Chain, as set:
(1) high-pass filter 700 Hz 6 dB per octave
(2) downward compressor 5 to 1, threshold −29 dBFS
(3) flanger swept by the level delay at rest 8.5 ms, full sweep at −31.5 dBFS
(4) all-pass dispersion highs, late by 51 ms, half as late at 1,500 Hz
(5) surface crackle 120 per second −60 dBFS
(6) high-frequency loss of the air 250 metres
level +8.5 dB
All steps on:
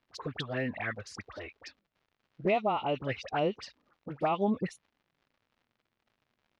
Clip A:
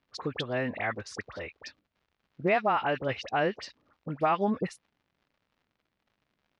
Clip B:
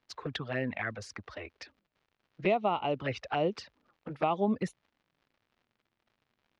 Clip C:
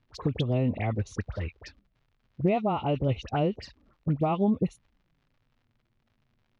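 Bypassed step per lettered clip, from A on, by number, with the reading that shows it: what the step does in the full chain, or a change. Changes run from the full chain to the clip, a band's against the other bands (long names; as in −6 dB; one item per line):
3, 2 kHz band +2.5 dB
4, change in crest factor +2.5 dB
1, 125 Hz band +11.5 dB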